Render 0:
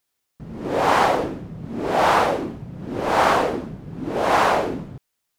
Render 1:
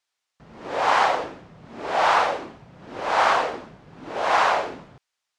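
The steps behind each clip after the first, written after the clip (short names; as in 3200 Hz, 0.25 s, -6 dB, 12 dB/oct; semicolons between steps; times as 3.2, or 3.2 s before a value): three-band isolator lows -14 dB, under 580 Hz, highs -23 dB, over 7900 Hz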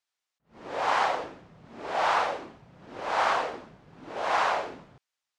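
attack slew limiter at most 210 dB/s; gain -6 dB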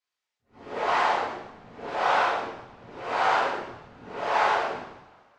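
whisperiser; air absorption 53 m; two-slope reverb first 0.81 s, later 3 s, from -26 dB, DRR -6.5 dB; gain -4.5 dB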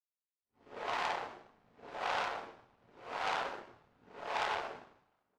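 power-law curve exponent 1.4; outdoor echo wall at 210 m, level -23 dB; core saturation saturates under 2800 Hz; gain -6.5 dB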